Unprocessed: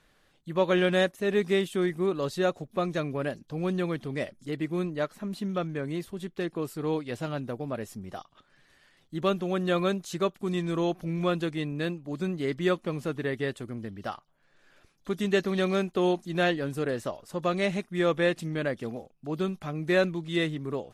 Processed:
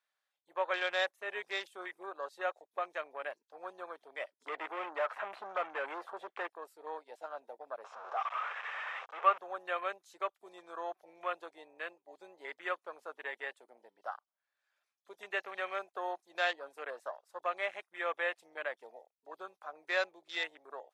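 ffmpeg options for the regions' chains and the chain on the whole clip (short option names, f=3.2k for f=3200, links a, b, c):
-filter_complex "[0:a]asettb=1/sr,asplit=3[a][b][c];[a]atrim=end=4.404[d];[b]atrim=start=4.4:end=6.47,asetpts=PTS-STARTPTS,afade=t=in:d=0.004:c=qsin,afade=t=out:st=2.066:d=0.004:c=qsin,acrossover=split=2900[e][f];[f]acompressor=threshold=-56dB:ratio=4:attack=1:release=60[g];[e][g]amix=inputs=2:normalize=0,asplit=2[h][i];[i]highpass=f=720:p=1,volume=29dB,asoftclip=type=tanh:threshold=-17dB[j];[h][j]amix=inputs=2:normalize=0,lowpass=f=1.4k:p=1,volume=-6dB[k];[c]atrim=start=6.466[l];[d][k]acrossfade=d=0.004:c1=hsin:c2=qsin[m];[m][l]acrossfade=d=0.004:c1=qsin:c2=hsin,asettb=1/sr,asplit=3[n][o][p];[n]atrim=end=7.844[q];[o]atrim=start=7.84:end=9.38,asetpts=PTS-STARTPTS,afade=t=in:d=0.004:c=qsin,afade=t=out:st=1.536:d=0.004:c=qsin,aeval=exprs='val(0)+0.5*0.0299*sgn(val(0))':c=same,highpass=280,equalizer=f=320:t=q:w=4:g=-7,equalizer=f=460:t=q:w=4:g=7,equalizer=f=800:t=q:w=4:g=3,equalizer=f=1.2k:t=q:w=4:g=9,equalizer=f=2.6k:t=q:w=4:g=4,equalizer=f=4.5k:t=q:w=4:g=-8,lowpass=f=5.3k:w=0.5412,lowpass=f=5.3k:w=1.3066[r];[p]atrim=start=9.376[s];[q][r]acrossfade=d=0.004:c1=hsin:c2=qsin[t];[t][s]acrossfade=d=0.004:c1=qsin:c2=hsin,afwtdn=0.0141,highpass=f=660:w=0.5412,highpass=f=660:w=1.3066,bandreject=f=2.9k:w=22,volume=-3dB"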